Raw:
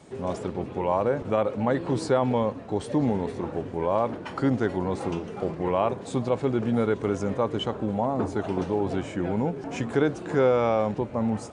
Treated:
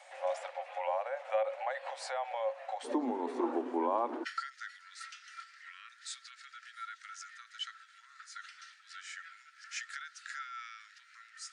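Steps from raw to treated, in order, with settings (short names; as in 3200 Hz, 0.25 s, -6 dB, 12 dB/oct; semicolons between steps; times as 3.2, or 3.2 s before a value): compressor, threshold -28 dBFS, peak gain reduction 11 dB; rippled Chebyshev high-pass 530 Hz, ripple 9 dB, from 2.83 s 240 Hz, from 4.23 s 1300 Hz; gain +5.5 dB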